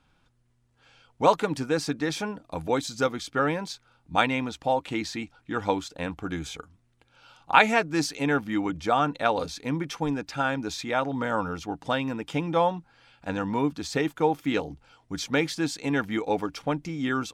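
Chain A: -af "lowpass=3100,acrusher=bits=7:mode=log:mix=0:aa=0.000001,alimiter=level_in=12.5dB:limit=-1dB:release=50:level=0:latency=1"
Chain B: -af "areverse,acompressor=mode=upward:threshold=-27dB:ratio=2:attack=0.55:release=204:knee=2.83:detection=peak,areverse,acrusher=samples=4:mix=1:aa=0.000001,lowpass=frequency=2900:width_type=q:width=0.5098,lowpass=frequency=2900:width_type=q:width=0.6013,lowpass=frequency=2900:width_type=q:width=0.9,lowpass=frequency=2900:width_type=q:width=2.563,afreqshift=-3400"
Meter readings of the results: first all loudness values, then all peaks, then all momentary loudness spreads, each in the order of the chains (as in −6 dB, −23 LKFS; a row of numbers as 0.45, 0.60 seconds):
−16.5, −24.5 LKFS; −1.0, −3.5 dBFS; 8, 10 LU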